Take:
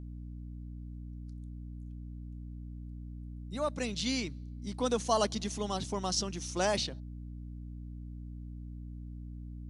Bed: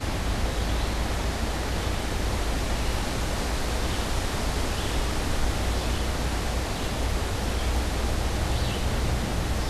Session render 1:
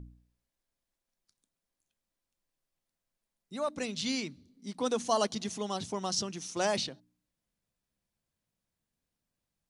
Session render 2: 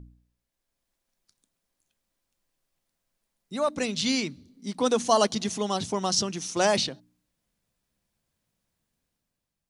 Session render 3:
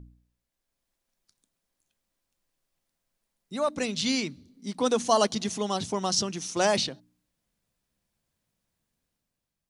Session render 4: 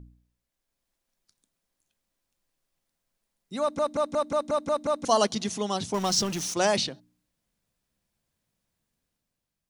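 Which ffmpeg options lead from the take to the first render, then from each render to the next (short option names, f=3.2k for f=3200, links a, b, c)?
-af "bandreject=f=60:t=h:w=4,bandreject=f=120:t=h:w=4,bandreject=f=180:t=h:w=4,bandreject=f=240:t=h:w=4,bandreject=f=300:t=h:w=4"
-af "dynaudnorm=f=150:g=9:m=7dB"
-af "volume=-1dB"
-filter_complex "[0:a]asettb=1/sr,asplit=3[a][b][c];[a]atrim=end=5.944[d];[b]atrim=start=5.94:end=6.54,asetpts=PTS-STARTPTS,afade=t=in:d=0.004:c=qsin,afade=t=out:st=0.596:d=0.004:c=qsin,aeval=exprs='val(0)+0.5*0.0224*sgn(val(0))':c=same[e];[c]atrim=start=6.536[f];[d][e]acrossfade=d=0.004:c1=hsin:c2=qsin[g];[g][f]acrossfade=d=0.004:c1=qsin:c2=hsin,asplit=9[h][i][j][k][l][m][n][o][p];[h]atrim=end=3.792[q];[i]atrim=start=3.608:end=3.792[r];[j]atrim=start=3.608:end=3.792[s];[k]atrim=start=3.608:end=3.792[t];[l]atrim=start=3.608:end=3.792[u];[m]atrim=start=3.608:end=3.792[v];[n]atrim=start=3.608:end=3.792[w];[o]atrim=start=3.608:end=3.792[x];[p]atrim=start=5.048[y];[q][r]acrossfade=d=0.004:c1=hsin:c2=hsin[z];[z][s]acrossfade=d=0.004:c1=hsin:c2=hsin[aa];[aa][t]acrossfade=d=0.004:c1=hsin:c2=hsin[ab];[ab][u]acrossfade=d=0.004:c1=hsin:c2=hsin[ac];[ac][v]acrossfade=d=0.004:c1=hsin:c2=hsin[ad];[ad][w]acrossfade=d=0.004:c1=hsin:c2=hsin[ae];[ae][x]acrossfade=d=0.004:c1=hsin:c2=hsin[af];[af][y]acrossfade=d=0.004:c1=hsin:c2=hsin"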